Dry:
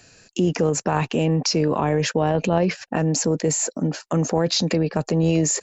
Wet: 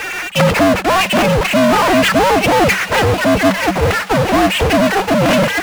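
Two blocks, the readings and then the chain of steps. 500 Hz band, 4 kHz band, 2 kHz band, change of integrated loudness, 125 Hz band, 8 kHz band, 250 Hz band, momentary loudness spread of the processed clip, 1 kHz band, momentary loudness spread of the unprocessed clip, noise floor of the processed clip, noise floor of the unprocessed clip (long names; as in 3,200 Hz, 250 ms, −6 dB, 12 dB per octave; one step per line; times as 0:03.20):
+9.0 dB, +9.5 dB, +18.0 dB, +9.0 dB, +3.5 dB, can't be measured, +7.0 dB, 3 LU, +14.0 dB, 4 LU, −24 dBFS, −57 dBFS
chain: three sine waves on the formant tracks
tilt shelving filter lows −4 dB, about 660 Hz
tube saturation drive 13 dB, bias 0.7
ring modulation 190 Hz
power curve on the samples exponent 0.35
on a send: delay with a high-pass on its return 931 ms, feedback 49%, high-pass 1,600 Hz, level −10 dB
on the sum: level +6.5 dB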